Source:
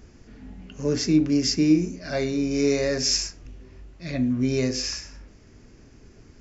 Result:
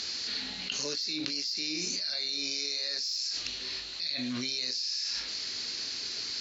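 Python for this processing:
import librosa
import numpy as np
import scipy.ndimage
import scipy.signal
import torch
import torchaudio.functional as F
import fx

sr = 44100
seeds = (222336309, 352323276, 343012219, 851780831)

p1 = fx.bandpass_q(x, sr, hz=4200.0, q=9.9)
p2 = np.clip(10.0 ** (33.0 / 20.0) * p1, -1.0, 1.0) / 10.0 ** (33.0 / 20.0)
p3 = p1 + (p2 * librosa.db_to_amplitude(-11.0))
p4 = fx.env_flatten(p3, sr, amount_pct=100)
y = p4 * librosa.db_to_amplitude(-1.0)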